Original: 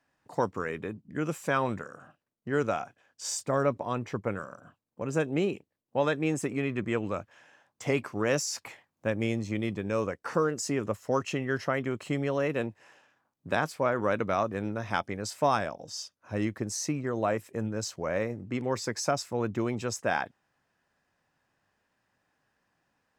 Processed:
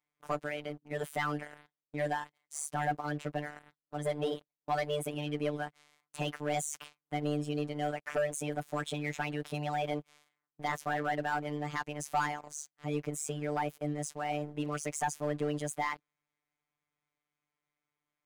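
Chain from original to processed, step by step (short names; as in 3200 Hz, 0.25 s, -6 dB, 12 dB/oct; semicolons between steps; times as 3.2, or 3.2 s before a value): varispeed +27%; robotiser 148 Hz; sample leveller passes 2; gain -8.5 dB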